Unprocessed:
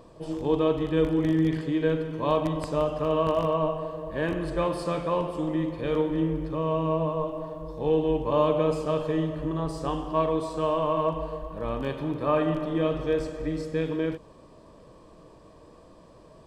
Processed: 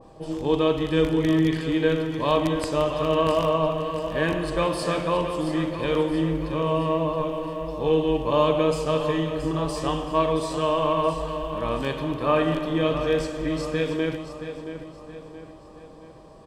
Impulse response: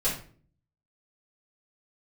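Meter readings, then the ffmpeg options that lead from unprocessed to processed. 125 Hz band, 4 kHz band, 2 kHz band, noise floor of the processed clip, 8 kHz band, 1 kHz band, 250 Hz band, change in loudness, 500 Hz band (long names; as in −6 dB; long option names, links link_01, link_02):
+2.0 dB, +9.0 dB, +7.0 dB, −46 dBFS, can't be measured, +3.5 dB, +2.5 dB, +3.0 dB, +2.5 dB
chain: -af "aeval=exprs='val(0)+0.00141*sin(2*PI*790*n/s)':channel_layout=same,aecho=1:1:674|1348|2022|2696|3370:0.316|0.152|0.0729|0.035|0.0168,adynamicequalizer=threshold=0.00794:dfrequency=1600:dqfactor=0.7:tfrequency=1600:tqfactor=0.7:attack=5:release=100:ratio=0.375:range=3.5:mode=boostabove:tftype=highshelf,volume=2dB"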